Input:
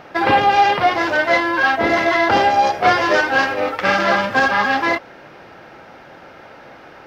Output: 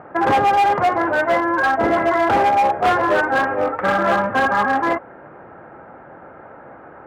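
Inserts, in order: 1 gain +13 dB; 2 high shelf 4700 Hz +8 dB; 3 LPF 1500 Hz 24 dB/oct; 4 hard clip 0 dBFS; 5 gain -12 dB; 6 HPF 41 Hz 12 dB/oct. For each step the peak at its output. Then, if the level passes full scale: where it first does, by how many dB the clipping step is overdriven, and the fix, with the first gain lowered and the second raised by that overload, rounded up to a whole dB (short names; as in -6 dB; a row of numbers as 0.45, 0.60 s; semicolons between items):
+10.5, +10.5, +9.5, 0.0, -12.0, -10.0 dBFS; step 1, 9.5 dB; step 1 +3 dB, step 5 -2 dB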